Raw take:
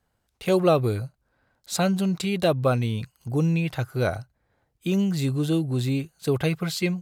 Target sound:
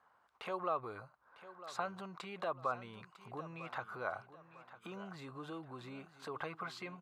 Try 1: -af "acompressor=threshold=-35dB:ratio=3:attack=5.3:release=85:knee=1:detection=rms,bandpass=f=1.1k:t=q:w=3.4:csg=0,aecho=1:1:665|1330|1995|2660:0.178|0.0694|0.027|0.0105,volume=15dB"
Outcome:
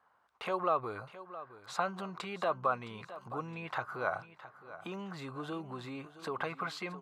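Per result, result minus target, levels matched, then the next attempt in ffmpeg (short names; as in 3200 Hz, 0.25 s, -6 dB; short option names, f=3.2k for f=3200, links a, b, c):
echo 0.286 s early; compressor: peak gain reduction -6 dB
-af "acompressor=threshold=-35dB:ratio=3:attack=5.3:release=85:knee=1:detection=rms,bandpass=f=1.1k:t=q:w=3.4:csg=0,aecho=1:1:951|1902|2853|3804:0.178|0.0694|0.027|0.0105,volume=15dB"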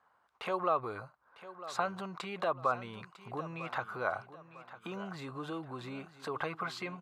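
compressor: peak gain reduction -6 dB
-af "acompressor=threshold=-44dB:ratio=3:attack=5.3:release=85:knee=1:detection=rms,bandpass=f=1.1k:t=q:w=3.4:csg=0,aecho=1:1:951|1902|2853|3804:0.178|0.0694|0.027|0.0105,volume=15dB"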